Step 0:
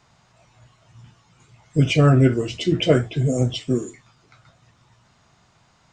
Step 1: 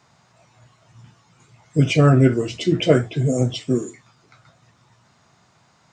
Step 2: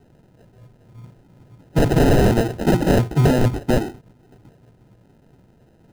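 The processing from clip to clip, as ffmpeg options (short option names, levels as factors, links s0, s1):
-af "highpass=100,equalizer=f=3000:w=2.7:g=-3,volume=1.19"
-af "acrusher=samples=39:mix=1:aa=0.000001,aeval=exprs='(mod(4.47*val(0)+1,2)-1)/4.47':c=same,tiltshelf=f=890:g=4.5,volume=1.19"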